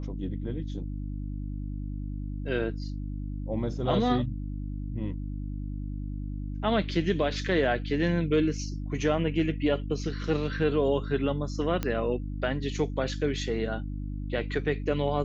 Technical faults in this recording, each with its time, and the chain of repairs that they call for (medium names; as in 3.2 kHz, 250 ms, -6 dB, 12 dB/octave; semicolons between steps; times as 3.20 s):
hum 50 Hz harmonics 6 -34 dBFS
11.83 s: pop -15 dBFS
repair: de-click; de-hum 50 Hz, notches 6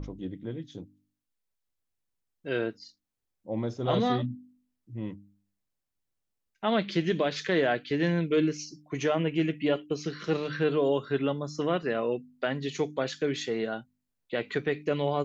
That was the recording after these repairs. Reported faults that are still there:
nothing left